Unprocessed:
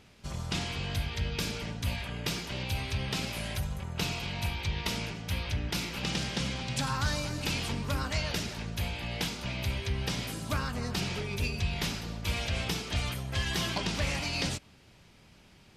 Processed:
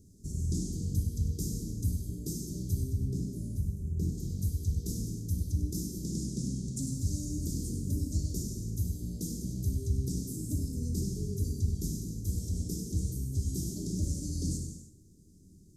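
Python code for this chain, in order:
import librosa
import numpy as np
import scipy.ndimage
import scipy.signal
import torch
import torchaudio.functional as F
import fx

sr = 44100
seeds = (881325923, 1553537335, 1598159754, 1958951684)

y = scipy.signal.sosfilt(scipy.signal.ellip(3, 1.0, 50, [340.0, 6700.0], 'bandstop', fs=sr, output='sos'), x)
y = y + 10.0 ** (-11.0 / 20.0) * np.pad(y, (int(98 * sr / 1000.0), 0))[:len(y)]
y = fx.rider(y, sr, range_db=4, speed_s=2.0)
y = fx.high_shelf(y, sr, hz=2100.0, db=-12.0, at=(2.83, 4.18))
y = fx.rev_gated(y, sr, seeds[0], gate_ms=360, shape='falling', drr_db=1.5)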